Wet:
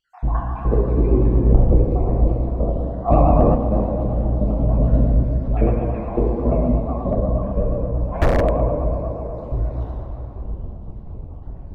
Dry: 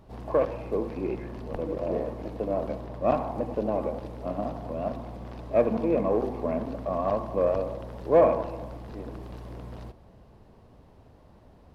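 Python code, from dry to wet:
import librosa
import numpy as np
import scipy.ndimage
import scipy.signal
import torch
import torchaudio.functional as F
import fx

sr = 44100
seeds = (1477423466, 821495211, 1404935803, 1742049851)

y = fx.spec_dropout(x, sr, seeds[0], share_pct=71)
y = fx.rev_plate(y, sr, seeds[1], rt60_s=3.3, hf_ratio=0.55, predelay_ms=0, drr_db=-5.0)
y = (np.mod(10.0 ** (13.0 / 20.0) * y + 1.0, 2.0) - 1.0) / 10.0 ** (13.0 / 20.0)
y = fx.high_shelf(y, sr, hz=3700.0, db=-7.5, at=(7.1, 8.01))
y = np.clip(y, -10.0 ** (-16.5 / 20.0), 10.0 ** (-16.5 / 20.0))
y = fx.rider(y, sr, range_db=5, speed_s=2.0)
y = fx.tilt_eq(y, sr, slope=-4.5)
y = fx.vibrato(y, sr, rate_hz=8.3, depth_cents=68.0)
y = fx.env_flatten(y, sr, amount_pct=50, at=(3.08, 3.54), fade=0.02)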